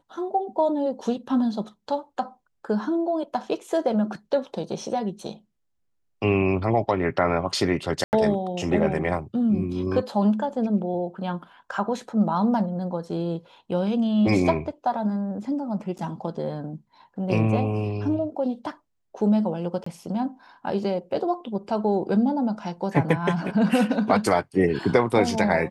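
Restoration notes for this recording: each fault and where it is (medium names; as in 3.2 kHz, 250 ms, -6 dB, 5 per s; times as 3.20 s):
8.04–8.13 s: dropout 89 ms
15.98–15.99 s: dropout 7.3 ms
19.84–19.86 s: dropout 24 ms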